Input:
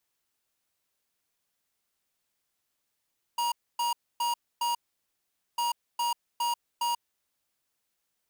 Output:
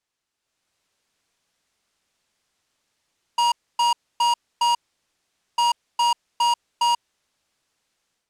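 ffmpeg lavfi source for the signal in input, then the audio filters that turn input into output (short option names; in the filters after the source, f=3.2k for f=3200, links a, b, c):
-f lavfi -i "aevalsrc='0.0398*(2*lt(mod(950*t,1),0.5)-1)*clip(min(mod(mod(t,2.2),0.41),0.14-mod(mod(t,2.2),0.41))/0.005,0,1)*lt(mod(t,2.2),1.64)':d=4.4:s=44100"
-af "dynaudnorm=f=370:g=3:m=9.5dB,lowpass=7.6k"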